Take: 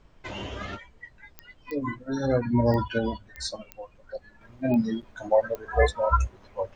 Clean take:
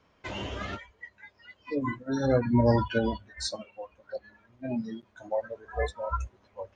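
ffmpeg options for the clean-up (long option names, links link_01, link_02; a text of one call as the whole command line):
ffmpeg -i in.wav -af "adeclick=threshold=4,agate=range=-21dB:threshold=-46dB,asetnsamples=nb_out_samples=441:pad=0,asendcmd='4.41 volume volume -9dB',volume=0dB" out.wav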